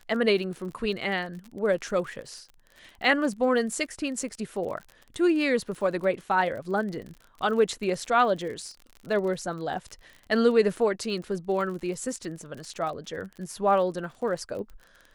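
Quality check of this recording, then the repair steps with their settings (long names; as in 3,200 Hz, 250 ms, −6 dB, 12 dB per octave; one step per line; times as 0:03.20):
surface crackle 37 per second −36 dBFS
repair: click removal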